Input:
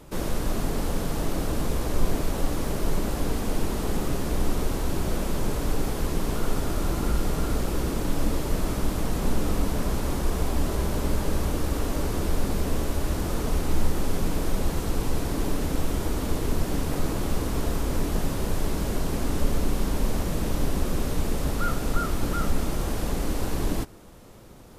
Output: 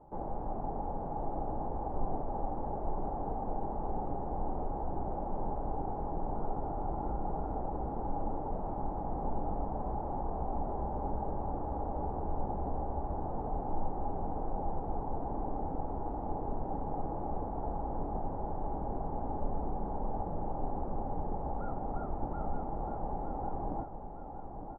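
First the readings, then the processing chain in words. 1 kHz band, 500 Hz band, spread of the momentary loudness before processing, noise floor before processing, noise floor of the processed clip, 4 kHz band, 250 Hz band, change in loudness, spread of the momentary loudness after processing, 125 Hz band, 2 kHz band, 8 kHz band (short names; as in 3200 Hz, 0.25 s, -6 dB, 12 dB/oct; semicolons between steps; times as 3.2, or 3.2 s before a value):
-0.5 dB, -7.5 dB, 2 LU, -31 dBFS, -39 dBFS, under -40 dB, -11.0 dB, -9.0 dB, 1 LU, -11.5 dB, under -25 dB, under -40 dB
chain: ladder low-pass 860 Hz, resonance 80%; feedback echo 0.912 s, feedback 54%, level -8.5 dB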